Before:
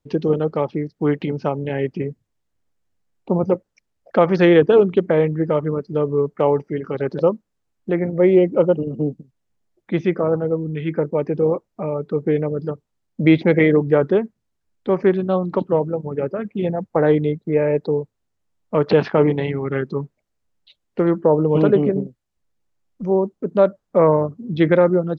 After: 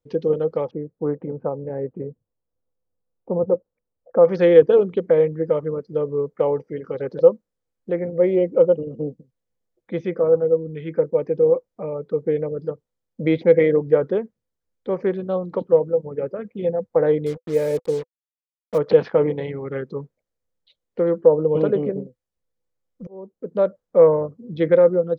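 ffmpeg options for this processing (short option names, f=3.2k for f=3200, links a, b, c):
-filter_complex "[0:a]asettb=1/sr,asplit=3[a][b][c];[a]atrim=end=0.714[d];[b]atrim=start=0.71:end=4.25,asetpts=PTS-STARTPTS,afade=t=in:d=0.004:c=qsin,afade=t=out:st=3.536:d=0.004:c=qsin,lowpass=f=1.3k:w=0.5412,lowpass=f=1.3k:w=1.3066[e];[c]atrim=start=4.246[f];[d][e]acrossfade=d=0.004:c1=hsin:c2=qsin[g];[g][f]acrossfade=d=0.004:c1=qsin:c2=hsin,asettb=1/sr,asplit=3[h][i][j];[h]atrim=end=17.264[k];[i]atrim=start=17.26:end=18.78,asetpts=PTS-STARTPTS,afade=t=in:d=0.004:c=qsin,afade=t=out:st=1.516:d=0.004:c=qsin,acrusher=bits=4:mix=0:aa=0.5[l];[j]atrim=start=18.776[m];[k][l]acrossfade=d=0.004:c1=hsin:c2=qsin[n];[n][m]acrossfade=d=0.004:c1=qsin:c2=hsin,asplit=2[o][p];[o]atrim=end=23.07,asetpts=PTS-STARTPTS,afade=t=out:st=23.066:d=0.004:c=hsin[q];[p]atrim=start=23.07,asetpts=PTS-STARTPTS,afade=t=in:d=0.54[r];[q][r]concat=n=2:v=0:a=1,equalizer=f=500:t=o:w=0.24:g=14,bandreject=f=2.7k:w=15,volume=-7.5dB"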